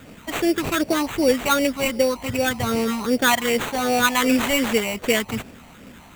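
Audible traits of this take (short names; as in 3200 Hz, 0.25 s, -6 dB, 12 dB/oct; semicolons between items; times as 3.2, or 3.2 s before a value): phasing stages 8, 2.6 Hz, lowest notch 430–1300 Hz; aliases and images of a low sample rate 5100 Hz, jitter 0%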